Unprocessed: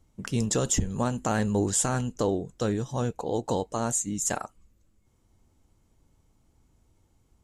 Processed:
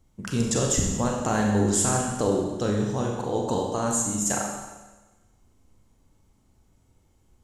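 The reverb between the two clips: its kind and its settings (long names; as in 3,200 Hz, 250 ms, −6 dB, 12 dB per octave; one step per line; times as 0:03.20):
four-comb reverb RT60 1.2 s, combs from 30 ms, DRR 0 dB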